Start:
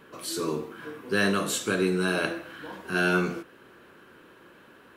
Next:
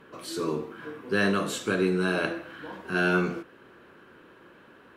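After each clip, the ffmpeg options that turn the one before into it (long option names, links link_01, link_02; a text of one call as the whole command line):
ffmpeg -i in.wav -af "aemphasis=mode=reproduction:type=cd" out.wav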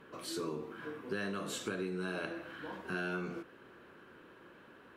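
ffmpeg -i in.wav -af "acompressor=threshold=-31dB:ratio=5,volume=-4dB" out.wav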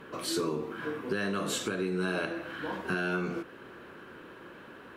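ffmpeg -i in.wav -af "alimiter=level_in=4.5dB:limit=-24dB:level=0:latency=1:release=449,volume=-4.5dB,volume=8.5dB" out.wav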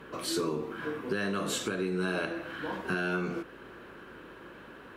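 ffmpeg -i in.wav -af "aeval=exprs='val(0)+0.000562*(sin(2*PI*50*n/s)+sin(2*PI*2*50*n/s)/2+sin(2*PI*3*50*n/s)/3+sin(2*PI*4*50*n/s)/4+sin(2*PI*5*50*n/s)/5)':channel_layout=same" out.wav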